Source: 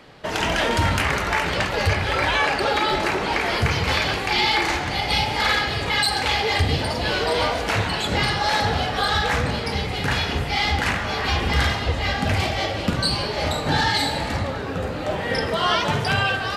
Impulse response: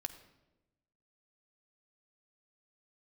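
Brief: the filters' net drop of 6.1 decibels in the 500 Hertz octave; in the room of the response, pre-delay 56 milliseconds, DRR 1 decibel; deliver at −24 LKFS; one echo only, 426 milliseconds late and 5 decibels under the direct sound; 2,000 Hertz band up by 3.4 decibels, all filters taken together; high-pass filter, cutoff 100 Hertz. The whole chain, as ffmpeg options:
-filter_complex "[0:a]highpass=100,equalizer=frequency=500:width_type=o:gain=-8,equalizer=frequency=2000:width_type=o:gain=4.5,aecho=1:1:426:0.562,asplit=2[link_01][link_02];[1:a]atrim=start_sample=2205,adelay=56[link_03];[link_02][link_03]afir=irnorm=-1:irlink=0,volume=0.5dB[link_04];[link_01][link_04]amix=inputs=2:normalize=0,volume=-7dB"

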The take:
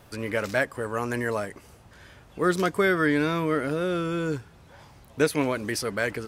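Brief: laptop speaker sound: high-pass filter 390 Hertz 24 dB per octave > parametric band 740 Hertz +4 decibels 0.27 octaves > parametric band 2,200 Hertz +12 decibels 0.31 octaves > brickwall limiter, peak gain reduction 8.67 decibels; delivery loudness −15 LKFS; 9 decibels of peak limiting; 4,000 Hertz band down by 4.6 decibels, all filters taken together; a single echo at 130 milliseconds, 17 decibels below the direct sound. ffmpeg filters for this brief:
ffmpeg -i in.wav -af "equalizer=frequency=4000:width_type=o:gain=-7,alimiter=limit=-18.5dB:level=0:latency=1,highpass=frequency=390:width=0.5412,highpass=frequency=390:width=1.3066,equalizer=frequency=740:width_type=o:width=0.27:gain=4,equalizer=frequency=2200:width_type=o:width=0.31:gain=12,aecho=1:1:130:0.141,volume=19.5dB,alimiter=limit=-5.5dB:level=0:latency=1" out.wav

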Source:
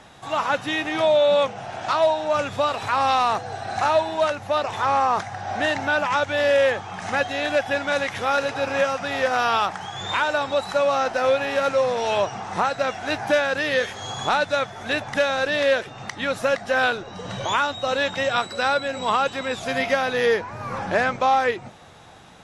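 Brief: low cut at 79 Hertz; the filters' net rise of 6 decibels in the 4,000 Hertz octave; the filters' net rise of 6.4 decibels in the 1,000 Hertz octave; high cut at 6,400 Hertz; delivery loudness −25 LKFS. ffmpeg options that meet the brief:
ffmpeg -i in.wav -af "highpass=79,lowpass=6400,equalizer=frequency=1000:width_type=o:gain=8,equalizer=frequency=4000:width_type=o:gain=7,volume=-7dB" out.wav

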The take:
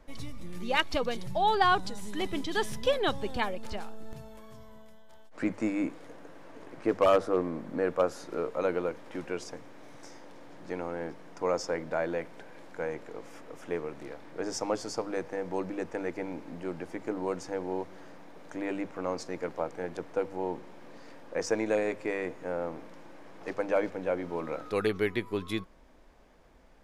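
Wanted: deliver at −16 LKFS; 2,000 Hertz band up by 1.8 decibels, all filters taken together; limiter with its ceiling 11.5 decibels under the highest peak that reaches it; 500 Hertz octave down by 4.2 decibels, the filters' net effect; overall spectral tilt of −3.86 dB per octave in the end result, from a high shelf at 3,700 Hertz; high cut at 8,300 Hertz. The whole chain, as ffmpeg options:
ffmpeg -i in.wav -af "lowpass=8300,equalizer=frequency=500:width_type=o:gain=-5,equalizer=frequency=2000:width_type=o:gain=4.5,highshelf=frequency=3700:gain=-7.5,volume=21dB,alimiter=limit=-1dB:level=0:latency=1" out.wav

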